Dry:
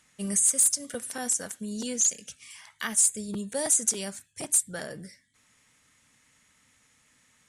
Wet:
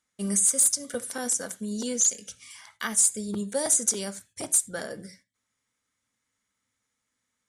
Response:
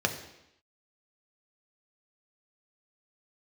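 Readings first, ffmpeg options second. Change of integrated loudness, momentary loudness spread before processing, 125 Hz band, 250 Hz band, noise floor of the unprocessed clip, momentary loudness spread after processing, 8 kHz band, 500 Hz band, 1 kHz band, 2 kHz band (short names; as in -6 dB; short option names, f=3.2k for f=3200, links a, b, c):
+1.0 dB, 17 LU, +2.0 dB, +2.5 dB, -66 dBFS, 16 LU, +1.0 dB, +3.0 dB, +1.5 dB, +0.5 dB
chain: -filter_complex "[0:a]agate=range=-17dB:threshold=-57dB:ratio=16:detection=peak,asplit=2[a][b];[1:a]atrim=start_sample=2205,afade=t=out:st=0.14:d=0.01,atrim=end_sample=6615[c];[b][c]afir=irnorm=-1:irlink=0,volume=-16.5dB[d];[a][d]amix=inputs=2:normalize=0"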